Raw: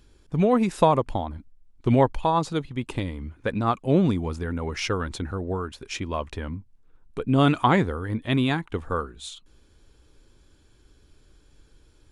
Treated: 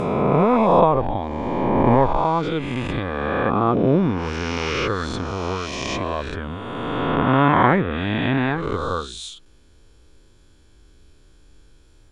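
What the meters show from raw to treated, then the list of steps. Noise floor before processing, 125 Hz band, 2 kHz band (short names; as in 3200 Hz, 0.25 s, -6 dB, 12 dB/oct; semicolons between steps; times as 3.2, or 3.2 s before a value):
-58 dBFS, +2.5 dB, +7.0 dB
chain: spectral swells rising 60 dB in 2.57 s; treble ducked by the level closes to 2200 Hz, closed at -16 dBFS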